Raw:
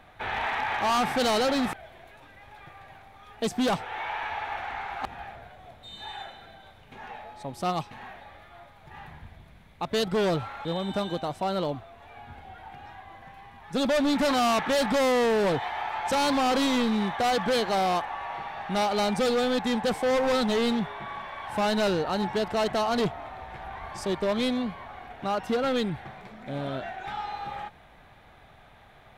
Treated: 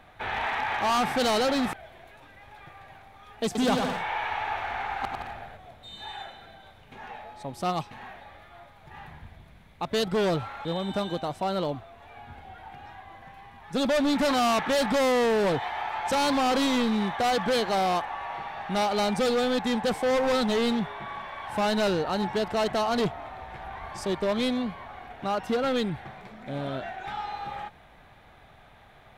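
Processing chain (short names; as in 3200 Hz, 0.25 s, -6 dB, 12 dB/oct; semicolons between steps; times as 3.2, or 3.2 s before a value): 3.45–5.57 bouncing-ball echo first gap 0.1 s, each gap 0.7×, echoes 5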